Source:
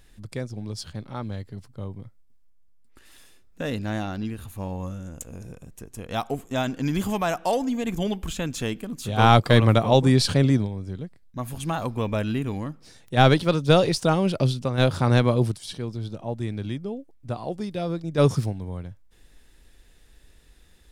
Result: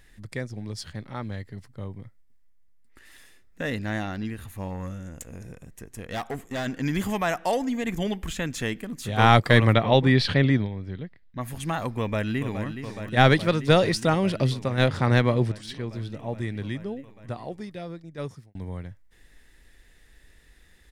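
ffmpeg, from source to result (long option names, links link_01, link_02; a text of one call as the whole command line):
ffmpeg -i in.wav -filter_complex "[0:a]asplit=3[link_01][link_02][link_03];[link_01]afade=type=out:start_time=4.68:duration=0.02[link_04];[link_02]asoftclip=type=hard:threshold=-25.5dB,afade=type=in:start_time=4.68:duration=0.02,afade=type=out:start_time=6.65:duration=0.02[link_05];[link_03]afade=type=in:start_time=6.65:duration=0.02[link_06];[link_04][link_05][link_06]amix=inputs=3:normalize=0,asettb=1/sr,asplit=3[link_07][link_08][link_09];[link_07]atrim=end=9.734[link_10];[link_08]atrim=start=9.73:end=11.41,asetpts=PTS-STARTPTS,afade=type=in:duration=0.004:curve=qsin,afade=type=out:start_time=1.676:duration=0.004:curve=qsin,highshelf=frequency=5200:width_type=q:width=1.5:gain=-12.5[link_11];[link_09]atrim=start=11.406[link_12];[link_10][link_11]acrossfade=duration=0.004:curve1=hsin:curve2=qsin[link_13];[link_13][link_12]acrossfade=duration=0.004:curve1=qsin:curve2=hsin,asplit=2[link_14][link_15];[link_15]afade=type=in:start_time=11.99:duration=0.01,afade=type=out:start_time=12.67:duration=0.01,aecho=0:1:420|840|1260|1680|2100|2520|2940|3360|3780|4200|4620|5040:0.354813|0.301591|0.256353|0.2179|0.185215|0.157433|0.133818|0.113745|0.0966833|0.0821808|0.0698537|0.0593756[link_16];[link_14][link_16]amix=inputs=2:normalize=0,asettb=1/sr,asplit=3[link_17][link_18][link_19];[link_17]atrim=end=14.864[link_20];[link_18]atrim=start=14.86:end=15.89,asetpts=PTS-STARTPTS,afade=type=in:duration=0.004:curve=qsin,afade=type=out:start_time=1.026:duration=0.004:curve=qsin,adynamicsmooth=sensitivity=6.5:basefreq=6800[link_21];[link_19]atrim=start=15.886[link_22];[link_20][link_21]acrossfade=duration=0.004:curve1=hsin:curve2=qsin[link_23];[link_23][link_22]acrossfade=duration=0.004:curve1=qsin:curve2=hsin,asplit=2[link_24][link_25];[link_24]atrim=end=18.55,asetpts=PTS-STARTPTS,afade=type=out:start_time=16.95:duration=1.6[link_26];[link_25]atrim=start=18.55,asetpts=PTS-STARTPTS,afade=type=in:duration=0.004:curve=hsin[link_27];[link_26][link_27]concat=n=2:v=0:a=1,equalizer=frequency=1900:width=3.3:gain=10,volume=-1.5dB" out.wav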